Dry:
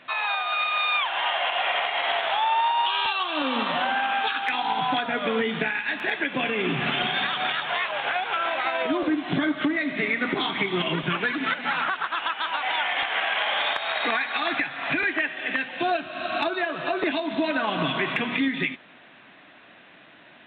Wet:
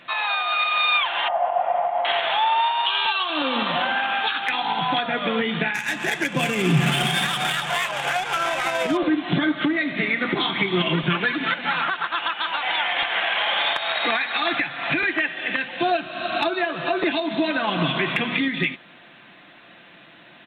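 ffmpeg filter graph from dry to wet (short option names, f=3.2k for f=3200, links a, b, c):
-filter_complex "[0:a]asettb=1/sr,asplit=3[a][b][c];[a]atrim=end=1.284[d];[b]atrim=start=1.28:end=2.05,asetpts=PTS-STARTPTS,afade=t=in:d=0.004:c=qsin,afade=t=out:st=0.766:d=0.004:c=qsin,lowpass=f=700:t=q:w=2.8,equalizer=f=400:t=o:w=0.84:g=-12.5[e];[c]atrim=start=2.046[f];[d][e]acrossfade=d=0.004:c1=hsin:c2=qsin[g];[g][f]acrossfade=d=0.004:c1=qsin:c2=hsin,asettb=1/sr,asplit=3[h][i][j];[h]atrim=end=2.594[k];[i]atrim=start=2.59:end=3.3,asetpts=PTS-STARTPTS,afade=t=in:d=0.004:c=qsin,afade=t=out:st=0.706:d=0.004:c=qsin,lowshelf=f=300:g=-7.5,aecho=1:1:4.5:0.4,atrim=end_sample=31311[l];[j]atrim=start=3.296[m];[k][l]acrossfade=d=0.004:c1=hsin:c2=qsin[n];[n][m]acrossfade=d=0.004:c1=qsin:c2=hsin,asettb=1/sr,asplit=3[o][p][q];[o]atrim=end=5.744[r];[p]atrim=start=5.74:end=8.97,asetpts=PTS-STARTPTS,afade=t=in:d=0.004:c=qsin,afade=t=out:st=3.226:d=0.004:c=qsin,equalizer=f=150:w=2.4:g=9.5,adynamicsmooth=sensitivity=6:basefreq=2.6k[s];[q]atrim=start=8.966[t];[r][s]acrossfade=d=0.004:c1=hsin:c2=qsin[u];[u][t]acrossfade=d=0.004:c1=qsin:c2=hsin,bass=f=250:g=3,treble=f=4k:g=7,aecho=1:1:5.8:0.32,volume=1.5dB"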